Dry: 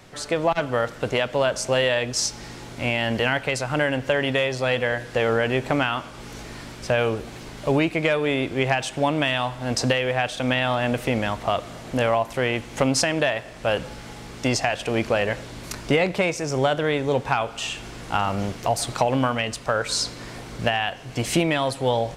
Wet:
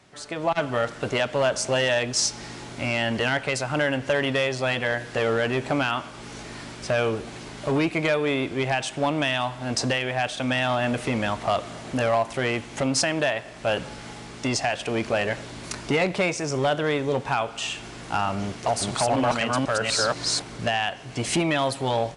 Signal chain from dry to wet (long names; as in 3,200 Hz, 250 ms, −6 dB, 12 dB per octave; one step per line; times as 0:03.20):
0:18.42–0:20.42: delay that plays each chunk backwards 247 ms, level 0 dB
low-shelf EQ 62 Hz −10.5 dB
notch filter 500 Hz, Q 12
automatic gain control gain up to 10.5 dB
asymmetric clip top −8.5 dBFS, bottom −7 dBFS
linear-phase brick-wall low-pass 11,000 Hz
saturating transformer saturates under 300 Hz
level −7 dB